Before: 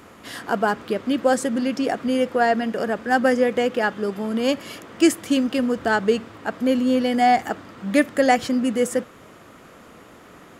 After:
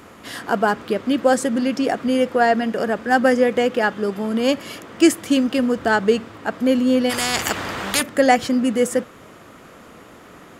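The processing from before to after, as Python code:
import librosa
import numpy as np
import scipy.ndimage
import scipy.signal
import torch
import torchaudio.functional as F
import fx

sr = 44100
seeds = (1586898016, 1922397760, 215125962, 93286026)

y = fx.spectral_comp(x, sr, ratio=4.0, at=(7.09, 8.01), fade=0.02)
y = y * 10.0 ** (2.5 / 20.0)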